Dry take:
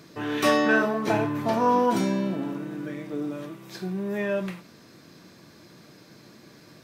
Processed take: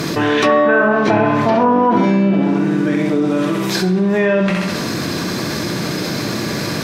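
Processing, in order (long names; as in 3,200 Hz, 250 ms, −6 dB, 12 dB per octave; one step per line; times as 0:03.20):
flutter between parallel walls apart 11.3 metres, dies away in 0.64 s
treble cut that deepens with the level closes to 1,800 Hz, closed at −17 dBFS
envelope flattener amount 70%
level +6.5 dB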